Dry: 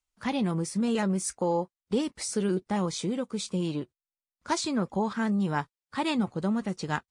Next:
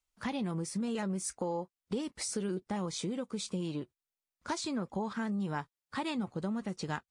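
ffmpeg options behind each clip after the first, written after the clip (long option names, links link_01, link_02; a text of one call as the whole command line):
ffmpeg -i in.wav -af "acompressor=threshold=-35dB:ratio=2.5" out.wav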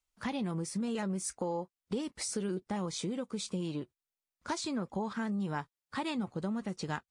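ffmpeg -i in.wav -af anull out.wav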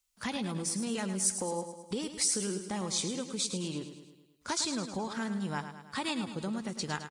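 ffmpeg -i in.wav -af "highshelf=frequency=2900:gain=11.5,aecho=1:1:106|212|318|424|530|636:0.316|0.174|0.0957|0.0526|0.0289|0.0159,volume=-1dB" out.wav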